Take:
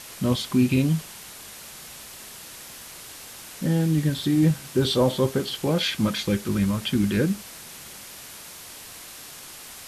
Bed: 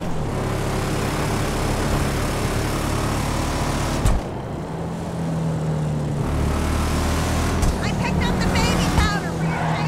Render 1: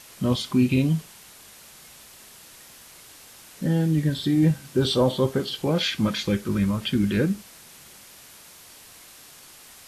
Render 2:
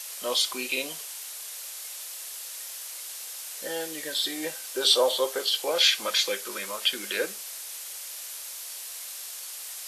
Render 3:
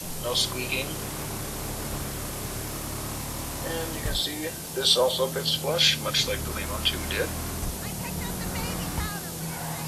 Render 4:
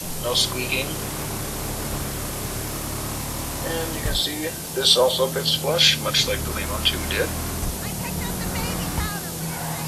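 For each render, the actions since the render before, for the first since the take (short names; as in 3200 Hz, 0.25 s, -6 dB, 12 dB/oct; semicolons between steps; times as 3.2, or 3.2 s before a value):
noise print and reduce 6 dB
Chebyshev high-pass 500 Hz, order 3; high shelf 3100 Hz +11.5 dB
add bed -12.5 dB
gain +4.5 dB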